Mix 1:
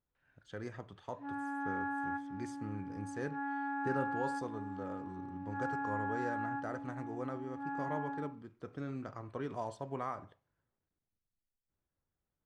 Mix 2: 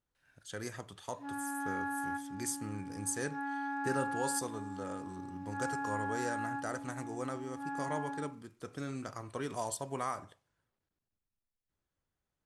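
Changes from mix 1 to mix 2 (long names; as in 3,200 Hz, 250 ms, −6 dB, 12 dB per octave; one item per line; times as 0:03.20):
speech: remove head-to-tape spacing loss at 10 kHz 28 dB
background: remove low-pass filter 2,200 Hz 12 dB per octave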